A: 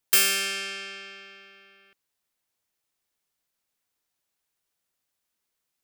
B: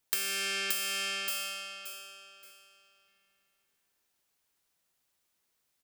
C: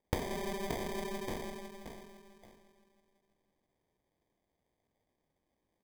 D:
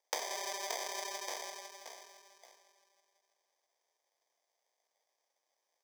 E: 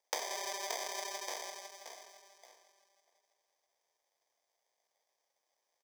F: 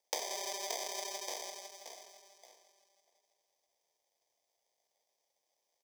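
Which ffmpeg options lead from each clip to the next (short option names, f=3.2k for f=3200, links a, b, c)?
-filter_complex "[0:a]asplit=2[a][b];[b]aecho=0:1:575|1150|1725|2300:0.562|0.157|0.0441|0.0123[c];[a][c]amix=inputs=2:normalize=0,acompressor=threshold=-31dB:ratio=12,volume=2dB"
-af "aphaser=in_gain=1:out_gain=1:delay=2.1:decay=0.23:speed=0.88:type=triangular,acrusher=samples=32:mix=1:aa=0.000001,volume=-4.5dB"
-af "highpass=f=560:w=0.5412,highpass=f=560:w=1.3066,equalizer=f=5.7k:t=o:w=0.61:g=13,volume=1dB"
-filter_complex "[0:a]asplit=2[a][b];[b]adelay=641.4,volume=-17dB,highshelf=f=4k:g=-14.4[c];[a][c]amix=inputs=2:normalize=0"
-af "equalizer=f=1.4k:t=o:w=0.67:g=-14.5,volume=1.5dB"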